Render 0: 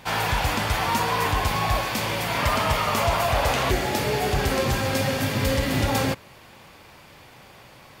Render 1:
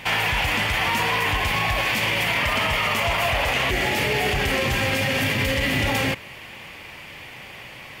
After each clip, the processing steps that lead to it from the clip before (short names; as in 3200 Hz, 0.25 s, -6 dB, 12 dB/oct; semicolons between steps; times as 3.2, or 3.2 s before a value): band shelf 2400 Hz +9 dB 1 oct; limiter -18 dBFS, peak gain reduction 10.5 dB; gain +4.5 dB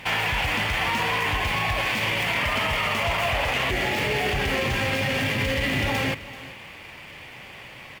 median filter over 5 samples; echo 0.384 s -17 dB; gain -2 dB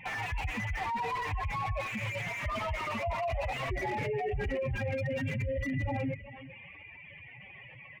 spectral contrast raised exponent 3.1; slew limiter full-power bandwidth 73 Hz; gain -7 dB